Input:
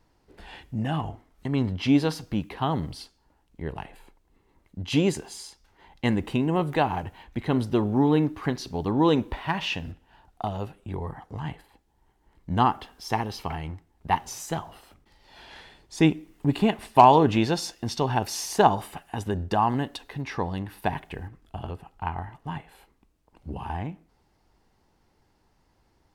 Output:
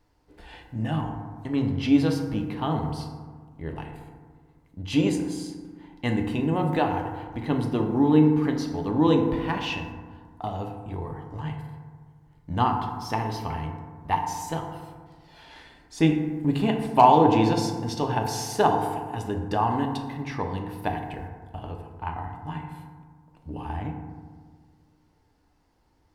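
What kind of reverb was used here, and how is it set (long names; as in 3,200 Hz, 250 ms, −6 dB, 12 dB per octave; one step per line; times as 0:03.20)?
feedback delay network reverb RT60 1.6 s, low-frequency decay 1.25×, high-frequency decay 0.35×, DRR 2.5 dB
level −3 dB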